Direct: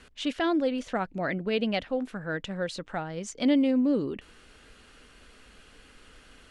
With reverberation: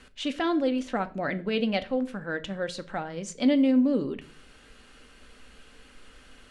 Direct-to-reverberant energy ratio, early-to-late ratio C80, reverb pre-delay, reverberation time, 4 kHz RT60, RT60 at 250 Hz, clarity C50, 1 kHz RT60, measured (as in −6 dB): 9.5 dB, 23.5 dB, 4 ms, 0.45 s, 0.40 s, 0.70 s, 18.5 dB, 0.40 s